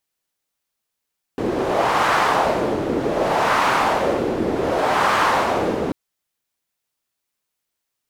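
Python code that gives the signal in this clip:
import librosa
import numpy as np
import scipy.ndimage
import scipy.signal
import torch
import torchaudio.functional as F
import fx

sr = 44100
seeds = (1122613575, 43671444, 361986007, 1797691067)

y = fx.wind(sr, seeds[0], length_s=4.54, low_hz=350.0, high_hz=1100.0, q=1.7, gusts=3, swing_db=5.0)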